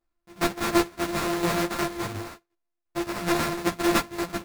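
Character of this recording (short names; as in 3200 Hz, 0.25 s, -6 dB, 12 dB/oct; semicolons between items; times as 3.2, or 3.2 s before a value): a buzz of ramps at a fixed pitch in blocks of 128 samples; tremolo saw down 2.8 Hz, depth 60%; aliases and images of a low sample rate 3100 Hz, jitter 20%; a shimmering, thickened sound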